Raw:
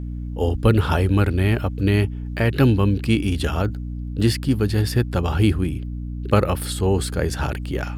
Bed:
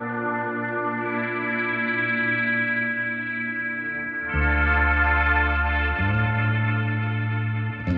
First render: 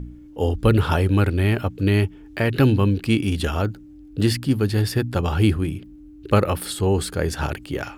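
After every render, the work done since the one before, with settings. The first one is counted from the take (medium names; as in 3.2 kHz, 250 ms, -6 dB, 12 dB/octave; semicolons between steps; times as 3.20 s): de-hum 60 Hz, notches 4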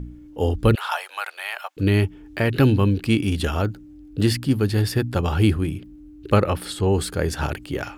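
0.75–1.77 s: steep high-pass 710 Hz; 6.36–6.93 s: treble shelf 10 kHz -11.5 dB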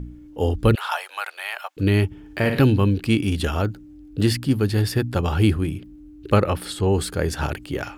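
2.06–2.62 s: flutter echo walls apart 9.6 m, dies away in 0.52 s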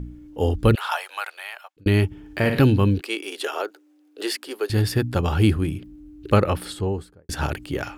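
1.16–1.86 s: fade out; 3.01–4.70 s: elliptic high-pass 380 Hz, stop band 80 dB; 6.54–7.29 s: studio fade out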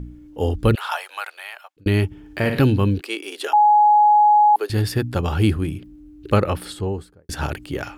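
3.53–4.56 s: bleep 838 Hz -10 dBFS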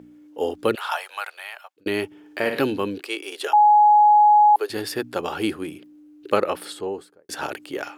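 Chebyshev high-pass 400 Hz, order 2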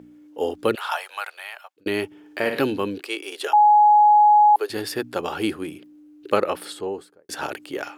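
no audible change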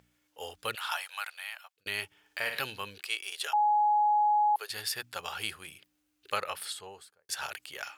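amplifier tone stack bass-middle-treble 10-0-10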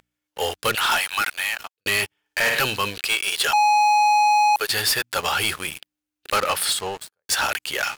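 waveshaping leveller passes 5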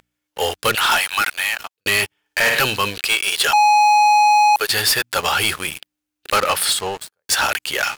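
trim +4 dB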